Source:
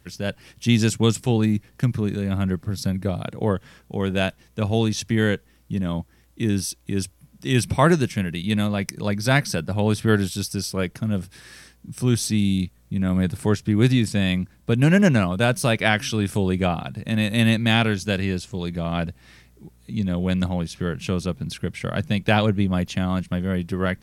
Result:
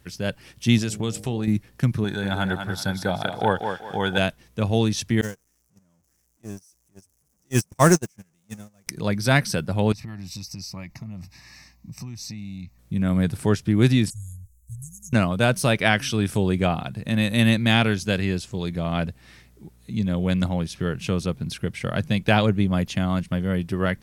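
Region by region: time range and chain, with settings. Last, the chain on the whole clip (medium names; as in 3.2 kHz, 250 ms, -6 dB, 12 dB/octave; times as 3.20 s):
0.78–1.48 s: de-hum 52.24 Hz, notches 15 + compression 3:1, threshold -23 dBFS
2.04–4.18 s: bass shelf 400 Hz -5 dB + small resonant body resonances 840/1500/3400 Hz, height 15 dB, ringing for 20 ms + thinning echo 193 ms, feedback 32%, high-pass 200 Hz, level -6 dB
5.21–8.87 s: jump at every zero crossing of -23.5 dBFS + gate -16 dBFS, range -43 dB + resonant high shelf 4.9 kHz +8 dB, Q 3
9.92–12.79 s: static phaser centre 2.2 kHz, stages 8 + compression 16:1, threshold -31 dBFS
14.10–15.13 s: Chebyshev band-stop 110–6700 Hz, order 5 + comb 4.7 ms
whole clip: none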